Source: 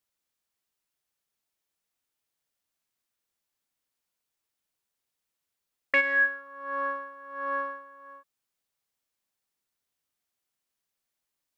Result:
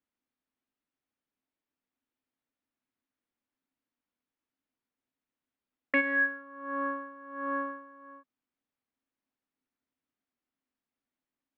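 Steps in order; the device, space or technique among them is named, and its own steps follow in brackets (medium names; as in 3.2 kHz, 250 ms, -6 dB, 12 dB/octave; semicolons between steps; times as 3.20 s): inside a cardboard box (low-pass 2.5 kHz 12 dB/octave; small resonant body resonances 260 Hz, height 15 dB, ringing for 55 ms); trim -3 dB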